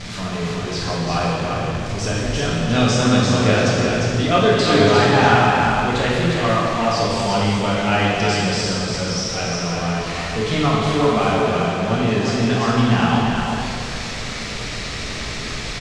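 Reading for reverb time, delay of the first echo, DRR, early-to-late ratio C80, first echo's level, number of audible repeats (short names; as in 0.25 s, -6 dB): 2.1 s, 0.352 s, -6.5 dB, -2.0 dB, -4.5 dB, 1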